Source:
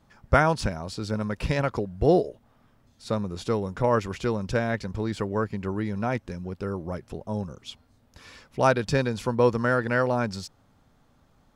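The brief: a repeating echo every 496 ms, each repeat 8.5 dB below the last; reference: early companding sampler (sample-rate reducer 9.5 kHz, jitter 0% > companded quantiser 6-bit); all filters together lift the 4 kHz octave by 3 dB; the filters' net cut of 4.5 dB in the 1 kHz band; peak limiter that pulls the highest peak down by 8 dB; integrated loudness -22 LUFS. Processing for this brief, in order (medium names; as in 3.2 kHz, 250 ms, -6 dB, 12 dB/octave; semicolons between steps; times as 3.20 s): peaking EQ 1 kHz -6.5 dB; peaking EQ 4 kHz +4 dB; peak limiter -16 dBFS; feedback delay 496 ms, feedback 38%, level -8.5 dB; sample-rate reducer 9.5 kHz, jitter 0%; companded quantiser 6-bit; trim +7.5 dB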